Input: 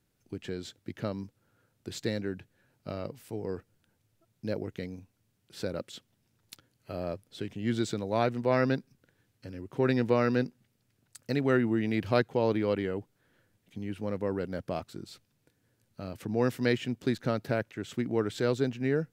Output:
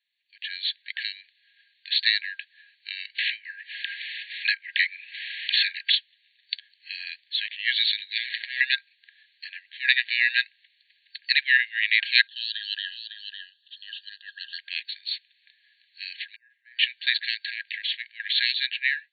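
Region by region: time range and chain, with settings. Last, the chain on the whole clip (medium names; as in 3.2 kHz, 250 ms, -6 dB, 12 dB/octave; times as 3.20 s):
3.18–5.95 s: three-band isolator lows -19 dB, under 440 Hz, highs -14 dB, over 2.9 kHz + phase dispersion lows, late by 83 ms, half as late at 590 Hz + level flattener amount 70%
8.18–8.61 s: peaking EQ 2.7 kHz -12.5 dB 0.27 oct + waveshaping leveller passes 2 + compressor with a negative ratio -28 dBFS, ratio -0.5
12.27–14.59 s: Butterworth band-stop 2.2 kHz, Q 1.5 + peaking EQ 3.1 kHz +2.5 dB 0.22 oct + delay 554 ms -8.5 dB
16.36–16.79 s: Butterworth band-pass 660 Hz, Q 3.5 + doubling 50 ms -4 dB
17.34–18.20 s: Butterworth band-stop 1.3 kHz, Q 3.9 + compression 4:1, threshold -34 dBFS
whole clip: FFT band-pass 1.6–4.5 kHz; level rider gain up to 17 dB; tilt EQ +3 dB/octave; trim -1 dB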